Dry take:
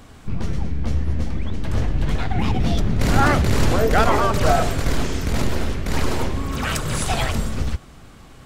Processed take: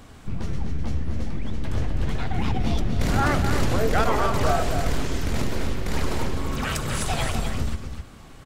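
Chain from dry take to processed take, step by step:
in parallel at −1.5 dB: downward compressor, threshold −25 dBFS, peak gain reduction 13.5 dB
on the sum: single-tap delay 254 ms −7 dB
level −7 dB

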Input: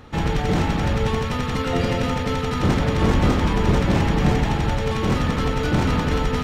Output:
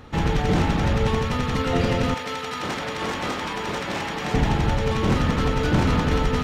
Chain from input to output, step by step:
0:02.14–0:04.34: high-pass filter 890 Hz 6 dB per octave
highs frequency-modulated by the lows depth 0.15 ms

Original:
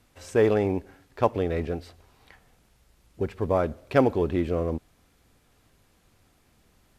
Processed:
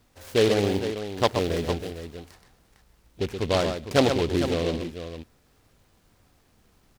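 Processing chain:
0:00.63–0:01.72: hold until the input has moved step −42 dBFS
multi-tap delay 125/455 ms −7.5/−10 dB
short delay modulated by noise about 2,800 Hz, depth 0.083 ms

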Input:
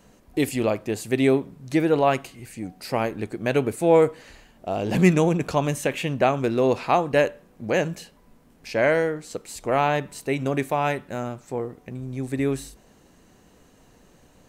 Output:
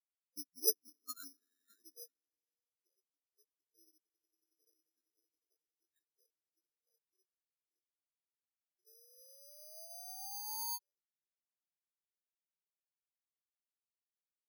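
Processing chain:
pitch shift by two crossfaded delay taps −7 semitones
source passing by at 0:03.67, 9 m/s, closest 8.2 metres
parametric band 470 Hz +10.5 dB 2 octaves
downward compressor 3 to 1, threshold −36 dBFS, peak gain reduction 22 dB
on a send: echo that builds up and dies away 92 ms, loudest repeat 8, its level −10 dB
on the sum: sound drawn into the spectrogram rise, 0:08.85–0:10.79, 440–970 Hz −32 dBFS
band-pass filter sweep 750 Hz → 4,100 Hz, 0:00.46–0:02.69
bad sample-rate conversion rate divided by 8×, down filtered, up zero stuff
every bin expanded away from the loudest bin 4 to 1
level +5.5 dB

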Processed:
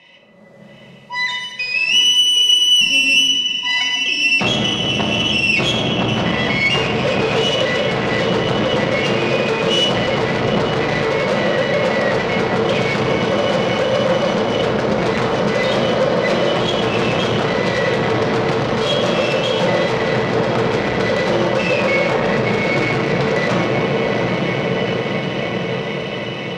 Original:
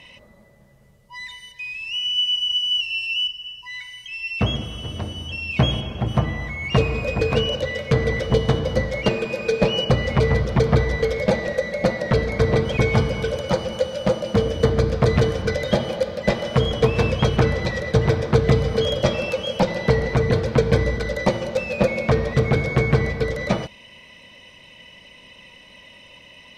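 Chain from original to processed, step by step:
high-shelf EQ 4,600 Hz −5 dB
feedback delay with all-pass diffusion 789 ms, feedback 71%, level −12 dB
tube saturation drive 27 dB, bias 0.7
three-way crossover with the lows and the highs turned down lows −24 dB, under 150 Hz, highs −14 dB, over 7,600 Hz
brickwall limiter −27.5 dBFS, peak gain reduction 8.5 dB
automatic gain control gain up to 15.5 dB
rectangular room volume 450 cubic metres, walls mixed, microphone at 1 metre
every ending faded ahead of time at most 150 dB per second
level +2 dB

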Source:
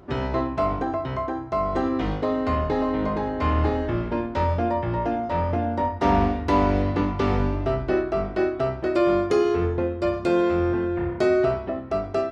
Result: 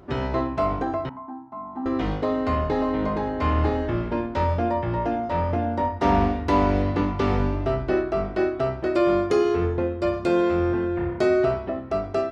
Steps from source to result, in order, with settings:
0:01.09–0:01.86: pair of resonant band-passes 470 Hz, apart 1.8 octaves

